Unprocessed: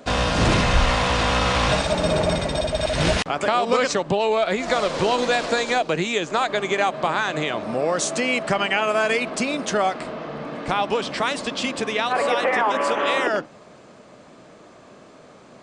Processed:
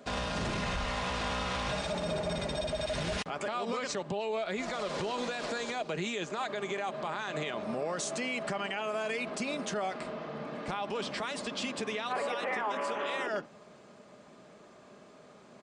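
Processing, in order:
high-pass filter 44 Hz
comb filter 4.9 ms, depth 32%
brickwall limiter −16.5 dBFS, peak gain reduction 10 dB
level −8.5 dB

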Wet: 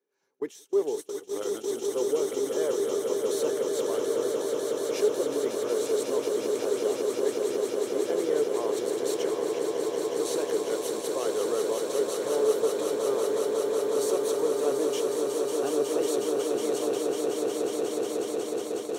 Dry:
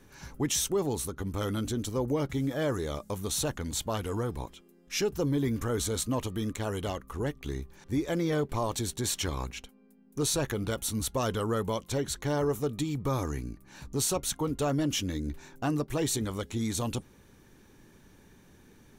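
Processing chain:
high-pass with resonance 420 Hz, resonance Q 4.9
echo that builds up and dies away 183 ms, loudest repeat 8, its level −7 dB
noise gate −25 dBFS, range −22 dB
level −7.5 dB

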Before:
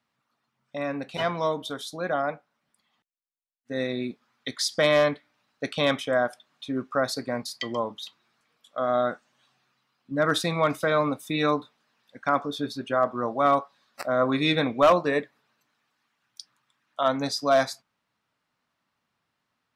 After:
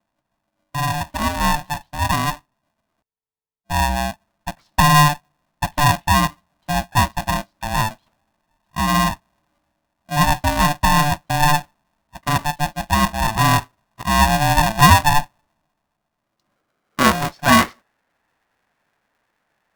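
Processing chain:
low-pass filter sweep 500 Hz → 1,400 Hz, 0:16.12–0:17.68
ring modulator with a square carrier 440 Hz
level +5 dB

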